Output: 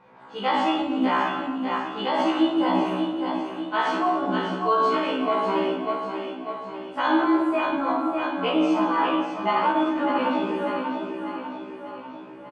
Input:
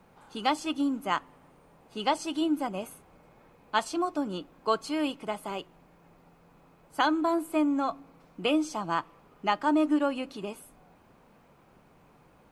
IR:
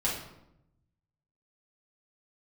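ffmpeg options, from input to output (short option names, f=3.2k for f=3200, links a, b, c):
-filter_complex "[0:a]asplit=2[a][b];[b]aecho=0:1:595|1190|1785|2380|2975|3570:0.422|0.219|0.114|0.0593|0.0308|0.016[c];[a][c]amix=inputs=2:normalize=0,flanger=delay=7.8:depth=8.4:regen=-59:speed=0.8:shape=sinusoidal,highpass=190,lowpass=2.9k,aecho=1:1:28|54:0.562|0.501,asplit=2[d][e];[1:a]atrim=start_sample=2205,asetrate=22932,aresample=44100[f];[e][f]afir=irnorm=-1:irlink=0,volume=-8.5dB[g];[d][g]amix=inputs=2:normalize=0,alimiter=limit=-18.5dB:level=0:latency=1:release=17,afftfilt=real='re*1.73*eq(mod(b,3),0)':imag='im*1.73*eq(mod(b,3),0)':win_size=2048:overlap=0.75,volume=7.5dB"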